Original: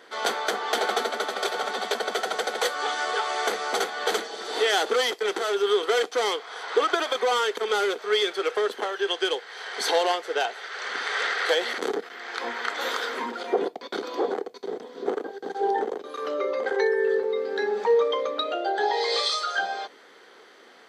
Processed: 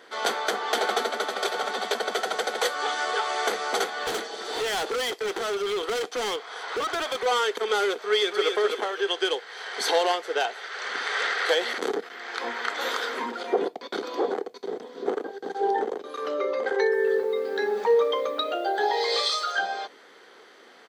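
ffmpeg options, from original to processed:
ffmpeg -i in.wav -filter_complex "[0:a]asettb=1/sr,asplit=3[link_01][link_02][link_03];[link_01]atrim=end=4.034[link_04];[link_02]atrim=start=4.03:end=7.26,asetpts=PTS-STARTPTS,afade=type=in:duration=0.004:curve=qsin,afade=type=out:start_time=3.226:duration=0.004:curve=qsin,volume=25dB,asoftclip=hard,volume=-25dB[link_05];[link_03]atrim=start=7.256[link_06];[link_04][link_05]acrossfade=duration=0.004:curve1=hsin:curve2=qsin[link_07];[link_07][link_06]acrossfade=duration=0.004:curve1=qsin:curve2=hsin,asplit=2[link_08][link_09];[link_09]afade=type=in:start_time=8.05:duration=0.01,afade=type=out:start_time=8.51:duration=0.01,aecho=0:1:260|520|780|1040:0.562341|0.168702|0.0506107|0.0151832[link_10];[link_08][link_10]amix=inputs=2:normalize=0,asettb=1/sr,asplit=3[link_11][link_12][link_13];[link_11]atrim=end=16.924[link_14];[link_12]atrim=start=16.92:end=19.52,asetpts=PTS-STARTPTS,afade=type=in:duration=0.004:curve=qsin,afade=type=out:start_time=2.596:duration=0.004:curve=qsin,acrusher=bits=8:mix=0:aa=0.5[link_15];[link_13]atrim=start=19.516[link_16];[link_14][link_15]acrossfade=duration=0.004:curve1=hsin:curve2=qsin[link_17];[link_17][link_16]acrossfade=duration=0.004:curve1=qsin:curve2=hsin" out.wav

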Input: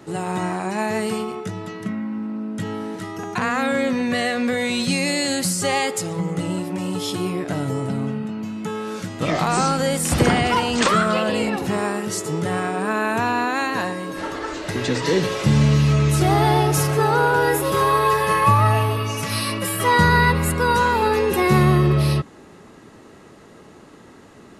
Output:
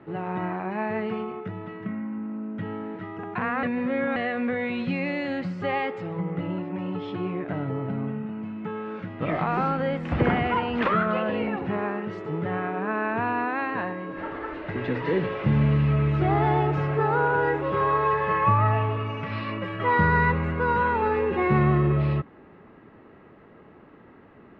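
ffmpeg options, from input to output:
ffmpeg -i in.wav -filter_complex "[0:a]asplit=3[link_01][link_02][link_03];[link_01]atrim=end=3.632[link_04];[link_02]atrim=start=3.628:end=4.162,asetpts=PTS-STARTPTS,areverse[link_05];[link_03]atrim=start=4.158[link_06];[link_04][link_05]acrossfade=duration=0.004:curve1=hsin:curve2=hsin[link_07];[link_07][link_06]acrossfade=duration=0.004:curve1=hsin:curve2=hsin,lowpass=frequency=2500:width=0.5412,lowpass=frequency=2500:width=1.3066,volume=-5dB" out.wav

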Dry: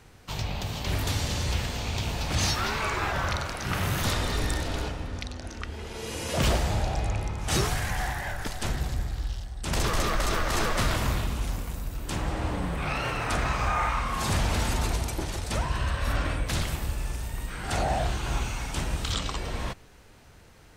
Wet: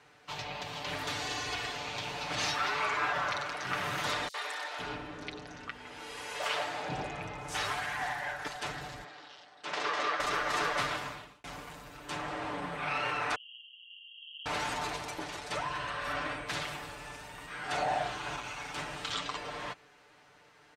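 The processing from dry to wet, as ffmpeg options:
ffmpeg -i in.wav -filter_complex "[0:a]asettb=1/sr,asplit=3[link_01][link_02][link_03];[link_01]atrim=end=1.214[link_04];[link_02]atrim=start=1.21:end=1.73,asetpts=PTS-STARTPTS,afade=type=in:duration=0.004:curve=qsin,afade=type=out:start_time=0.516:duration=0.004:curve=qsin,aecho=1:1:2.7:0.65,atrim=end_sample=22932[link_05];[link_03]atrim=start=1.726[link_06];[link_04][link_05]acrossfade=duration=0.004:curve1=hsin:curve2=qsin[link_07];[link_07][link_06]acrossfade=duration=0.004:curve1=qsin:curve2=hsin,asettb=1/sr,asplit=3[link_08][link_09][link_10];[link_08]atrim=end=4.284[link_11];[link_09]atrim=start=4.28:end=8.02,asetpts=PTS-STARTPTS,afade=type=in:duration=0.004:curve=qsin,afade=type=out:start_time=3.736:duration=0.004:curve=qsin,acrossover=split=500|5400[link_12][link_13][link_14];[link_13]adelay=60[link_15];[link_12]adelay=510[link_16];[link_16][link_15][link_14]amix=inputs=3:normalize=0,atrim=end_sample=164934[link_17];[link_10]atrim=start=8.016[link_18];[link_11][link_17]acrossfade=duration=0.004:curve1=hsin:curve2=qsin[link_19];[link_19][link_18]acrossfade=duration=0.004:curve1=qsin:curve2=hsin,asettb=1/sr,asplit=3[link_20][link_21][link_22];[link_20]atrim=end=9.044[link_23];[link_21]atrim=start=9.04:end=10.2,asetpts=PTS-STARTPTS,afade=type=in:duration=0.004:curve=qsin,afade=type=out:start_time=1.156:duration=0.004:curve=qsin,highpass=310,lowpass=5200[link_24];[link_22]atrim=start=10.196[link_25];[link_23][link_24]acrossfade=duration=0.004:curve1=hsin:curve2=qsin[link_26];[link_26][link_25]acrossfade=duration=0.004:curve1=qsin:curve2=hsin,asettb=1/sr,asplit=3[link_27][link_28][link_29];[link_27]atrim=end=13.354[link_30];[link_28]atrim=start=13.35:end=14.46,asetpts=PTS-STARTPTS,afade=type=in:duration=0.004:curve=qsin,afade=type=out:start_time=1.106:duration=0.004:curve=qsin,asuperpass=centerf=3000:order=20:qfactor=5.2[link_31];[link_29]atrim=start=14.456[link_32];[link_30][link_31]acrossfade=duration=0.004:curve1=hsin:curve2=qsin[link_33];[link_33][link_32]acrossfade=duration=0.004:curve1=qsin:curve2=hsin,asettb=1/sr,asplit=3[link_34][link_35][link_36];[link_34]atrim=end=18.364[link_37];[link_35]atrim=start=18.36:end=18.78,asetpts=PTS-STARTPTS,afade=type=in:duration=0.004:curve=qsin,afade=type=out:start_time=0.416:duration=0.004:curve=qsin,asoftclip=type=hard:threshold=-28dB[link_38];[link_36]atrim=start=18.776[link_39];[link_37][link_38]acrossfade=duration=0.004:curve1=hsin:curve2=qsin[link_40];[link_40][link_39]acrossfade=duration=0.004:curve1=qsin:curve2=hsin,asplit=2[link_41][link_42];[link_41]atrim=end=11.44,asetpts=PTS-STARTPTS,afade=type=out:start_time=10.78:duration=0.66[link_43];[link_42]atrim=start=11.44,asetpts=PTS-STARTPTS,afade=type=in:duration=0.004:curve=hsin[link_44];[link_43][link_44]concat=n=2:v=0:a=1,highpass=frequency=1000:poles=1,aemphasis=mode=reproduction:type=75fm,aecho=1:1:6.8:0.69" out.wav

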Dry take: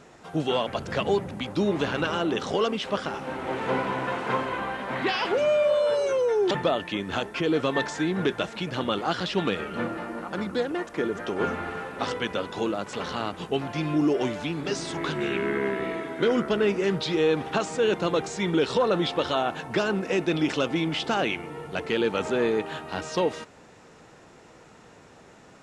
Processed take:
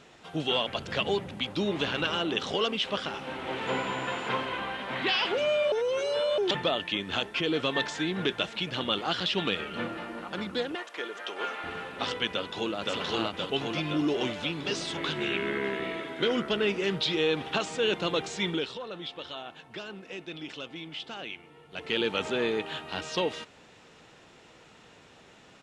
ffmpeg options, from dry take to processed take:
ffmpeg -i in.wav -filter_complex "[0:a]asettb=1/sr,asplit=3[link_01][link_02][link_03];[link_01]atrim=end=3.674[link_04];[link_02]atrim=start=3.67:end=4.29,asetpts=PTS-STARTPTS,afade=type=in:duration=0.004:curve=qsin,afade=type=out:start_time=0.616:duration=0.004:curve=qsin,aeval=exprs='val(0)+0.00282*sin(2*PI*7100*n/s)':channel_layout=same[link_05];[link_03]atrim=start=4.286[link_06];[link_04][link_05]acrossfade=duration=0.004:curve1=hsin:curve2=qsin[link_07];[link_07][link_06]acrossfade=duration=0.004:curve1=qsin:curve2=hsin,asettb=1/sr,asplit=3[link_08][link_09][link_10];[link_08]atrim=end=10.754[link_11];[link_09]atrim=start=10.75:end=11.64,asetpts=PTS-STARTPTS,afade=type=in:duration=0.004:curve=qsin,afade=type=out:start_time=0.886:duration=0.004:curve=qsin,highpass=560[link_12];[link_10]atrim=start=11.636[link_13];[link_11][link_12]acrossfade=duration=0.004:curve1=hsin:curve2=qsin[link_14];[link_14][link_13]acrossfade=duration=0.004:curve1=qsin:curve2=hsin,asplit=2[link_15][link_16];[link_16]afade=type=in:start_time=12.29:duration=0.01,afade=type=out:start_time=12.76:duration=0.01,aecho=0:1:520|1040|1560|2080|2600|3120|3640|4160|4680|5200|5720|6240:0.944061|0.660843|0.46259|0.323813|0.226669|0.158668|0.111068|0.0777475|0.0544232|0.0380963|0.0266674|0.0186672[link_17];[link_15][link_17]amix=inputs=2:normalize=0,asplit=5[link_18][link_19][link_20][link_21][link_22];[link_18]atrim=end=5.722[link_23];[link_19]atrim=start=5.718:end=6.382,asetpts=PTS-STARTPTS,areverse[link_24];[link_20]atrim=start=6.378:end=18.74,asetpts=PTS-STARTPTS,afade=type=out:start_time=12.072:duration=0.29:silence=0.251189[link_25];[link_21]atrim=start=18.74:end=21.69,asetpts=PTS-STARTPTS,volume=-12dB[link_26];[link_22]atrim=start=21.69,asetpts=PTS-STARTPTS,afade=type=in:duration=0.29:silence=0.251189[link_27];[link_23][link_24]acrossfade=duration=0.004:curve1=hsin:curve2=hsin[link_28];[link_25][link_26][link_27]concat=n=3:v=0:a=1[link_29];[link_28][link_29]acrossfade=duration=0.004:curve1=hsin:curve2=hsin,equalizer=frequency=3200:width=1.2:gain=10,volume=-5dB" out.wav

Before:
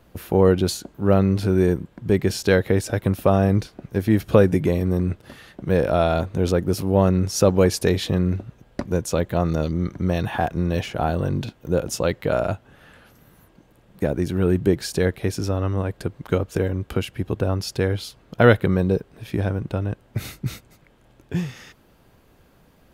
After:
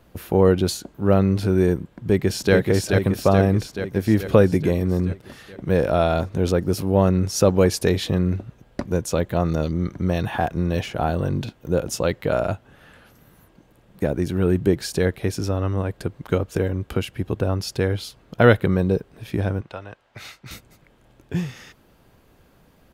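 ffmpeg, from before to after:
ffmpeg -i in.wav -filter_complex "[0:a]asplit=2[link_01][link_02];[link_02]afade=type=in:start_time=1.89:duration=0.01,afade=type=out:start_time=2.55:duration=0.01,aecho=0:1:430|860|1290|1720|2150|2580|3010|3440|3870|4300:0.668344|0.434424|0.282375|0.183544|0.119304|0.0775473|0.0504058|0.0327637|0.0212964|0.0138427[link_03];[link_01][link_03]amix=inputs=2:normalize=0,asettb=1/sr,asplit=3[link_04][link_05][link_06];[link_04]atrim=end=19.614[link_07];[link_05]atrim=start=19.61:end=20.51,asetpts=PTS-STARTPTS,afade=type=in:duration=0.004:curve=qsin,afade=type=out:start_time=0.896:duration=0.004:curve=qsin,acrossover=split=590 6500:gain=0.141 1 0.2[link_08][link_09][link_10];[link_08][link_09][link_10]amix=inputs=3:normalize=0[link_11];[link_06]atrim=start=20.506[link_12];[link_07][link_11]acrossfade=duration=0.004:curve1=hsin:curve2=qsin[link_13];[link_13][link_12]acrossfade=duration=0.004:curve1=qsin:curve2=hsin" out.wav

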